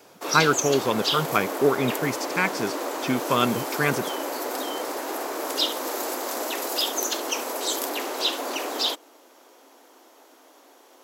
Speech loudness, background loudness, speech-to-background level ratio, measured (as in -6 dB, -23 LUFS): -25.0 LUFS, -27.5 LUFS, 2.5 dB